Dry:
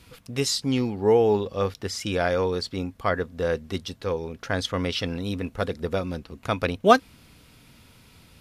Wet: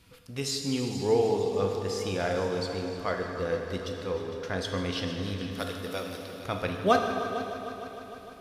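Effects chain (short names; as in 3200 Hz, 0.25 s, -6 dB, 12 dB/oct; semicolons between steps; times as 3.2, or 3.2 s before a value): 5.51–6.39 RIAA curve recording; multi-head echo 0.152 s, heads all three, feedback 64%, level -17 dB; plate-style reverb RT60 2.5 s, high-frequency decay 0.9×, DRR 3 dB; gain -7 dB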